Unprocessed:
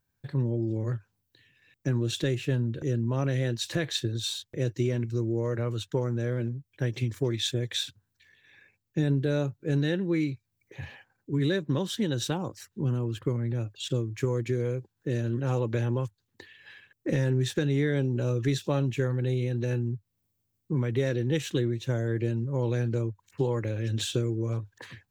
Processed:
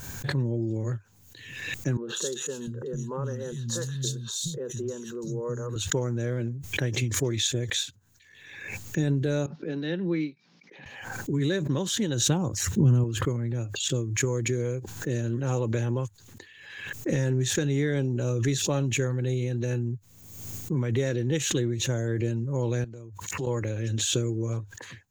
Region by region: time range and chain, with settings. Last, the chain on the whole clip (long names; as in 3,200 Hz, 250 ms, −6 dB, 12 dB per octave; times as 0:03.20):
0:01.97–0:05.76: phaser with its sweep stopped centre 450 Hz, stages 8 + three-band delay without the direct sound mids, highs, lows 120/700 ms, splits 220/2,300 Hz
0:09.46–0:10.86: Chebyshev band-pass filter 160–5,300 Hz, order 5 + expander for the loud parts, over −44 dBFS
0:12.27–0:13.04: high-pass filter 49 Hz + low-shelf EQ 210 Hz +11 dB + notch filter 4,700 Hz, Q 14
0:22.84–0:23.47: high-pass filter 60 Hz + downward compressor 3 to 1, threshold −44 dBFS + notch filter 1,600 Hz, Q 20
whole clip: parametric band 6,700 Hz +13 dB 0.23 octaves; background raised ahead of every attack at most 48 dB per second